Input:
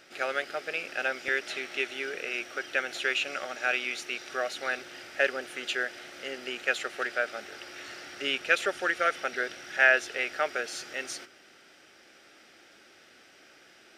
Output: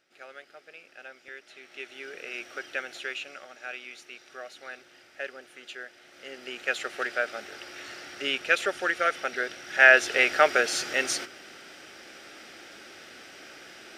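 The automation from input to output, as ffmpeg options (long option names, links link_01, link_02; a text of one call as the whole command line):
ffmpeg -i in.wav -af "volume=17dB,afade=type=in:start_time=1.52:duration=1.03:silence=0.223872,afade=type=out:start_time=2.55:duration=0.89:silence=0.398107,afade=type=in:start_time=6:duration=0.94:silence=0.266073,afade=type=in:start_time=9.65:duration=0.55:silence=0.398107" out.wav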